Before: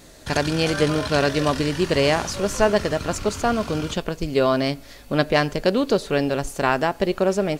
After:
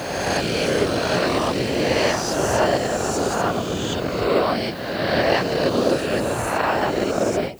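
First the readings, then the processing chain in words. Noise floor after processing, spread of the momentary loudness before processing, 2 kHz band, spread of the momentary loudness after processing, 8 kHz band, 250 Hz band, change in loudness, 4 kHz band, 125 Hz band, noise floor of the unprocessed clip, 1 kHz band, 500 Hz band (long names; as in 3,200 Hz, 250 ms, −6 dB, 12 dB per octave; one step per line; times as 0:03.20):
−28 dBFS, 6 LU, +1.5 dB, 4 LU, +3.0 dB, −0.5 dB, +0.5 dB, +1.5 dB, −1.5 dB, −44 dBFS, +2.0 dB, +0.5 dB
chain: peak hold with a rise ahead of every peak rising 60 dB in 2.03 s
random phases in short frames
background noise violet −49 dBFS
high-pass filter 62 Hz
every ending faded ahead of time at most 160 dB per second
level −3.5 dB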